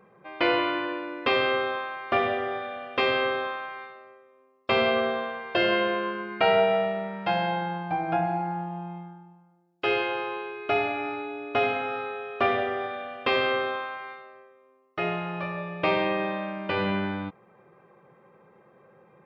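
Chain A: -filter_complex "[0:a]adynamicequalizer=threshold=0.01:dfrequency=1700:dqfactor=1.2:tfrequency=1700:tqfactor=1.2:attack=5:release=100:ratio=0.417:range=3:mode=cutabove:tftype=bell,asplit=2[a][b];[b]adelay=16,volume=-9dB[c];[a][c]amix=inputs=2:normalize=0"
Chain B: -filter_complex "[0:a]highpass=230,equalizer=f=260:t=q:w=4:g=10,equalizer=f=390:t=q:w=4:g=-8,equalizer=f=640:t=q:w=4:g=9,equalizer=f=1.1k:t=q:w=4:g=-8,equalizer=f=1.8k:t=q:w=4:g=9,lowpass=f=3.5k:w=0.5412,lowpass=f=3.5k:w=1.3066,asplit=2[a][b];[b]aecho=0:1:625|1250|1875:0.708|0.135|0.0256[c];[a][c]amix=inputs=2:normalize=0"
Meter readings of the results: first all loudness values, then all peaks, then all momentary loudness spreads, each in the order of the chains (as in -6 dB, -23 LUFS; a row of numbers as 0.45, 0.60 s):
-27.5, -23.5 LUFS; -9.0, -5.0 dBFS; 12, 13 LU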